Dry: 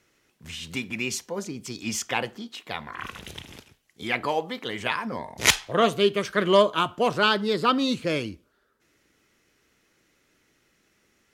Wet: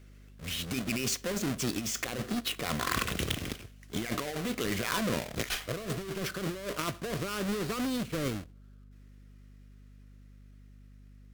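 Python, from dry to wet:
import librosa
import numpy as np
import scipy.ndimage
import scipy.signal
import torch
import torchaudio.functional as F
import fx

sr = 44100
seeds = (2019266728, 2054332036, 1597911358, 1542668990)

y = fx.halfwave_hold(x, sr)
y = fx.doppler_pass(y, sr, speed_mps=14, closest_m=20.0, pass_at_s=2.89)
y = fx.peak_eq(y, sr, hz=880.0, db=-12.5, octaves=0.26)
y = fx.over_compress(y, sr, threshold_db=-33.0, ratio=-1.0)
y = fx.add_hum(y, sr, base_hz=50, snr_db=18)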